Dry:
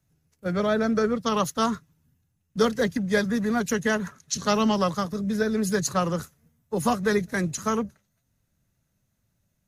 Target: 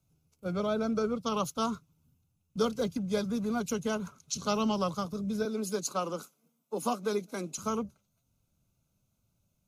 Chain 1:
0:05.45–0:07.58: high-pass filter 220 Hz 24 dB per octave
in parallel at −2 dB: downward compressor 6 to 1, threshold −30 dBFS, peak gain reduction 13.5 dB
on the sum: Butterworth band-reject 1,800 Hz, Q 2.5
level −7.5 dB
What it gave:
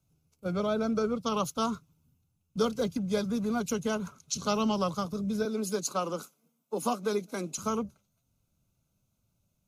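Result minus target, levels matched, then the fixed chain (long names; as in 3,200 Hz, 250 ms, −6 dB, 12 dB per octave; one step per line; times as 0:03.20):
downward compressor: peak gain reduction −8.5 dB
0:05.45–0:07.58: high-pass filter 220 Hz 24 dB per octave
in parallel at −2 dB: downward compressor 6 to 1, threshold −40 dBFS, peak gain reduction 22 dB
on the sum: Butterworth band-reject 1,800 Hz, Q 2.5
level −7.5 dB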